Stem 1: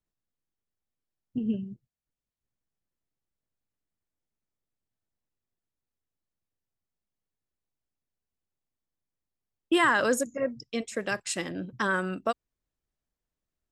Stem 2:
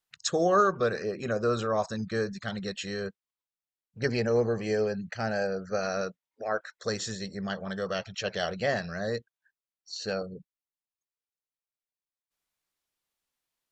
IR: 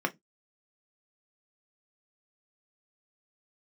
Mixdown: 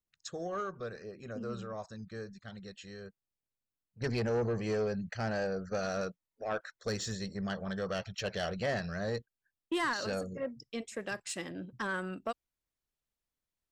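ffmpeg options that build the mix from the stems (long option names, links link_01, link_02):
-filter_complex "[0:a]volume=-6.5dB[link_01];[1:a]agate=range=-7dB:threshold=-41dB:ratio=16:detection=peak,lowshelf=frequency=98:gain=10,volume=-3dB,afade=type=in:start_time=3.69:duration=0.48:silence=0.281838,asplit=2[link_02][link_03];[link_03]apad=whole_len=604767[link_04];[link_01][link_04]sidechaincompress=threshold=-44dB:ratio=8:attack=11:release=122[link_05];[link_05][link_02]amix=inputs=2:normalize=0,asoftclip=type=tanh:threshold=-26dB"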